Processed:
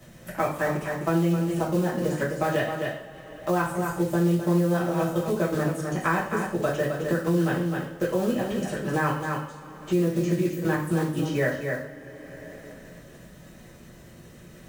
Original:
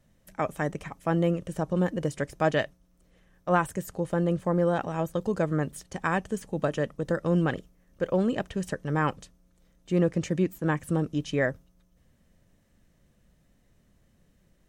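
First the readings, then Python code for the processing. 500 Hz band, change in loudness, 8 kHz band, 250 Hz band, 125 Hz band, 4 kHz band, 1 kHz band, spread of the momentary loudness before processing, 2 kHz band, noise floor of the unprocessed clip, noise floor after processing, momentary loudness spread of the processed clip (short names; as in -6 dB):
+2.0 dB, +2.5 dB, +4.5 dB, +3.0 dB, +2.5 dB, +3.0 dB, +2.0 dB, 7 LU, +3.5 dB, -66 dBFS, -48 dBFS, 16 LU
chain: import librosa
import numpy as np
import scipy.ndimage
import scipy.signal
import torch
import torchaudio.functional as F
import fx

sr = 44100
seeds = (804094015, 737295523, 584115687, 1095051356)

y = fx.block_float(x, sr, bits=5)
y = fx.highpass(y, sr, hz=72.0, slope=6)
y = fx.level_steps(y, sr, step_db=9)
y = y + 10.0 ** (-8.0 / 20.0) * np.pad(y, (int(259 * sr / 1000.0), 0))[:len(y)]
y = fx.rev_double_slope(y, sr, seeds[0], early_s=0.44, late_s=3.0, knee_db=-27, drr_db=-7.0)
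y = fx.band_squash(y, sr, depth_pct=70)
y = y * 10.0 ** (-3.0 / 20.0)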